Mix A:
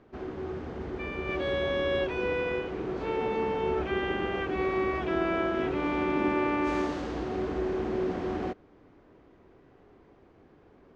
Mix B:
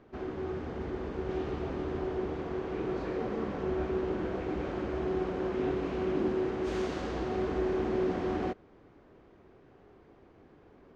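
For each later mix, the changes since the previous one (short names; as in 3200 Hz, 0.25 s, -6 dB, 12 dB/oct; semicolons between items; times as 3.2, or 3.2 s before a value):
second sound: muted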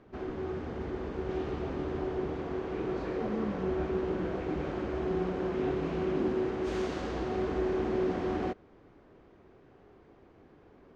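speech: add tilt -3 dB/oct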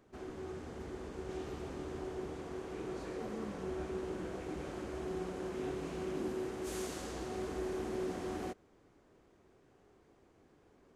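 speech -10.5 dB; background -8.5 dB; master: remove air absorption 210 m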